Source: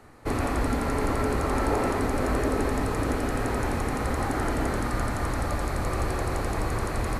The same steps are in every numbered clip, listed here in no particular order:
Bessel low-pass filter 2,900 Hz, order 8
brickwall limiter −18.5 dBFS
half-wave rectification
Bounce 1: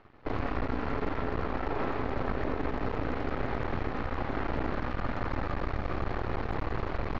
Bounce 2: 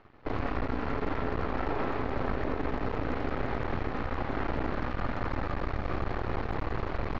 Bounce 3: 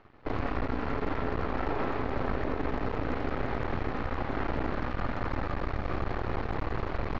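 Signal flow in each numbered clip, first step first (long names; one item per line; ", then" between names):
brickwall limiter, then half-wave rectification, then Bessel low-pass filter
half-wave rectification, then brickwall limiter, then Bessel low-pass filter
half-wave rectification, then Bessel low-pass filter, then brickwall limiter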